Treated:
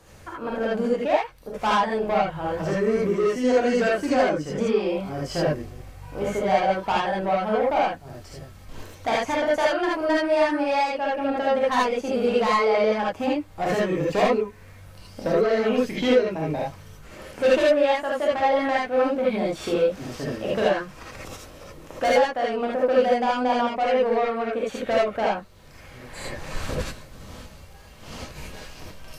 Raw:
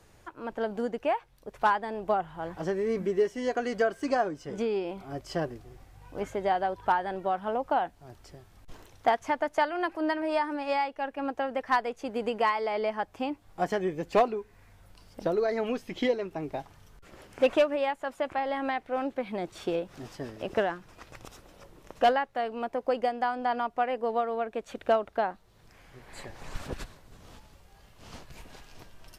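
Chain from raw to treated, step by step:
soft clipping −24.5 dBFS, distortion −11 dB
reverb whose tail is shaped and stops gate 100 ms rising, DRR −5 dB
level +4 dB

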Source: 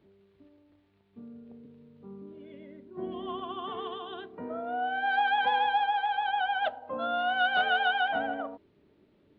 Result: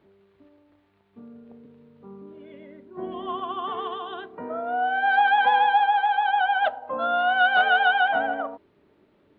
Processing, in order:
parametric band 1,100 Hz +8 dB 2.5 octaves

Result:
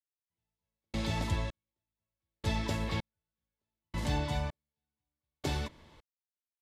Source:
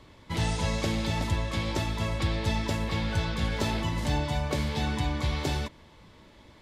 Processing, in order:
gate pattern ".....xxx" 80 BPM −60 dB
level −4 dB

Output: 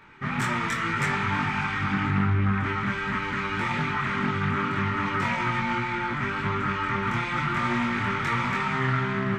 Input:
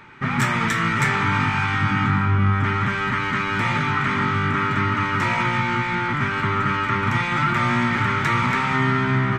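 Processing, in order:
multi-voice chorus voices 6, 0.82 Hz, delay 23 ms, depth 3.1 ms
highs frequency-modulated by the lows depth 0.23 ms
level −2.5 dB

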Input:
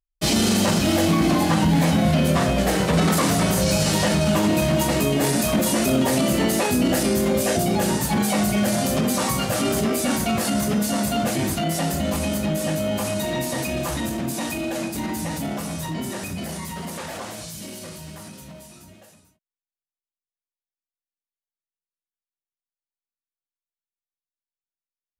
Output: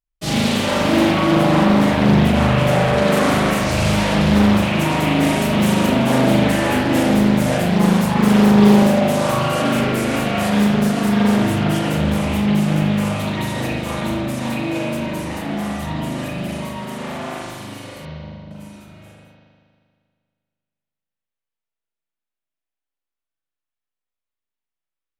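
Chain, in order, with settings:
0:18.05–0:18.51: inverse Chebyshev low-pass filter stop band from 4,700 Hz, stop band 80 dB
spring reverb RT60 2 s, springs 39 ms, chirp 50 ms, DRR −9.5 dB
highs frequency-modulated by the lows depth 0.61 ms
level −4.5 dB

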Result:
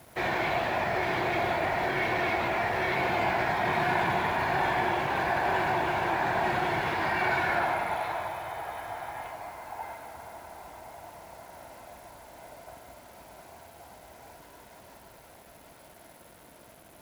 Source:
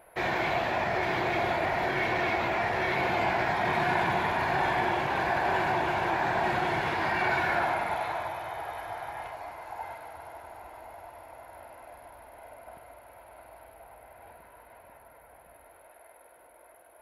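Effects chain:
noise in a band 43–410 Hz −60 dBFS
0:13.42–0:13.91: frequency shifter +21 Hz
bit reduction 9 bits

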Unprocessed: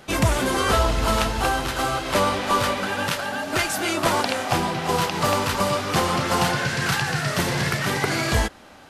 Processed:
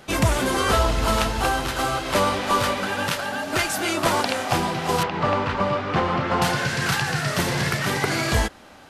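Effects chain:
0:05.03–0:06.42: low-pass filter 2,500 Hz 12 dB per octave

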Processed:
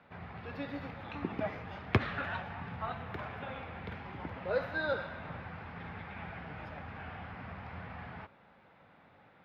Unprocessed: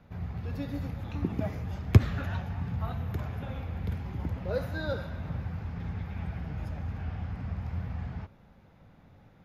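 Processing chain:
high-pass filter 1,400 Hz 6 dB per octave
high-frequency loss of the air 370 metres
level +10 dB

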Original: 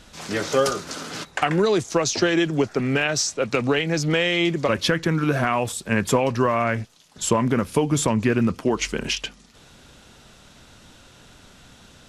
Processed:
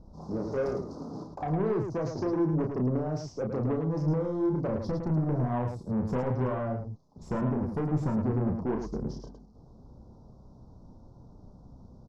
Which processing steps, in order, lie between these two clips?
Chebyshev band-stop filter 1,000–5,200 Hz, order 3
low-shelf EQ 350 Hz +9 dB
soft clipping −17.5 dBFS, distortion −9 dB
high-frequency loss of the air 310 metres
on a send: loudspeakers that aren't time-aligned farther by 11 metres −5 dB, 37 metres −6 dB
on the sum: level −8 dB

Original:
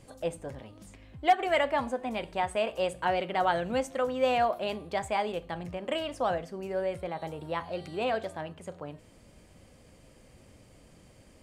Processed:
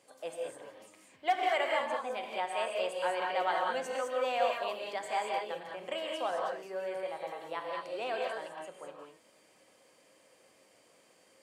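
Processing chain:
high-pass filter 470 Hz 12 dB per octave
reverb whose tail is shaped and stops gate 230 ms rising, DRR −0.5 dB
level −5 dB

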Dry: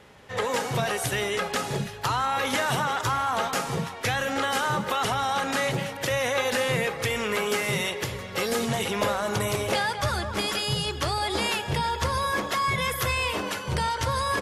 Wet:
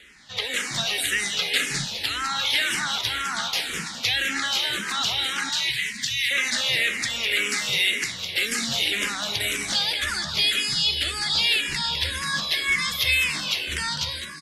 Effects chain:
fade-out on the ending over 0.55 s
octave-band graphic EQ 125/500/1,000/2,000/4,000/8,000 Hz −10/−10/−9/+7/+11/+4 dB
in parallel at 0 dB: brickwall limiter −13.5 dBFS, peak gain reduction 7.5 dB
0:01.38–0:01.85: on the sum: comb filter 6.8 ms, depth 94%
0:05.49–0:06.31: elliptic band-stop filter 170–1,800 Hz
echo with shifted repeats 205 ms, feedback 37%, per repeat +77 Hz, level −7 dB
frequency shifter mixed with the dry sound −1.9 Hz
level −4.5 dB

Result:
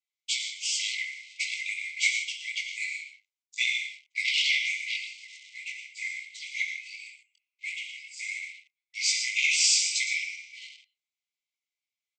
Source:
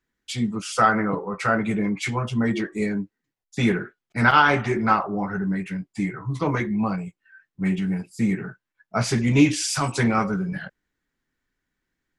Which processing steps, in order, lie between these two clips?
on a send: single-tap delay 114 ms −11.5 dB
on the sum: chorus effect 2.7 Hz, delay 16.5 ms, depth 5 ms
reverb whose tail is shaped and stops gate 190 ms flat, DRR 4 dB
leveller curve on the samples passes 2
linear-phase brick-wall band-pass 2,000–8,400 Hz

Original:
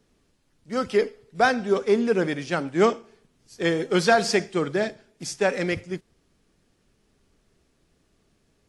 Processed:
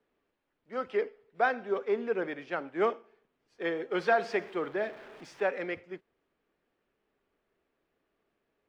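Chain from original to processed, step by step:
0:03.98–0:05.49: converter with a step at zero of −34.5 dBFS
three-way crossover with the lows and the highs turned down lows −16 dB, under 310 Hz, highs −24 dB, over 3,000 Hz
level −6.5 dB

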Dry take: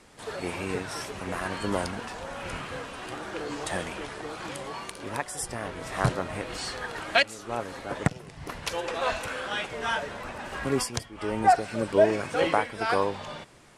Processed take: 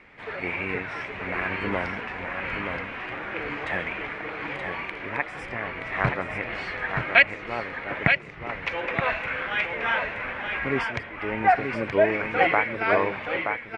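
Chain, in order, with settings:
low-pass with resonance 2,200 Hz, resonance Q 4.4
on a send: single-tap delay 925 ms −5.5 dB
on the sum: level −1 dB

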